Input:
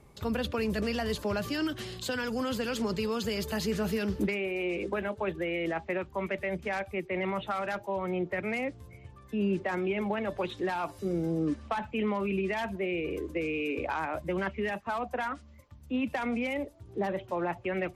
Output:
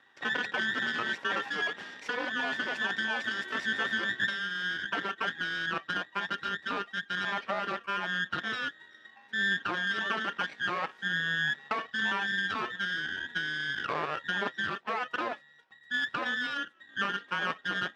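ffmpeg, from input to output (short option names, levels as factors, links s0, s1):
-filter_complex "[0:a]afftfilt=real='real(if(between(b,1,1012),(2*floor((b-1)/92)+1)*92-b,b),0)':imag='imag(if(between(b,1,1012),(2*floor((b-1)/92)+1)*92-b,b),0)*if(between(b,1,1012),-1,1)':win_size=2048:overlap=0.75,asplit=2[s0][s1];[s1]adynamicsmooth=sensitivity=3:basefreq=1200,volume=1[s2];[s0][s2]amix=inputs=2:normalize=0,aeval=exprs='max(val(0),0)':c=same,highpass=220,lowpass=4000"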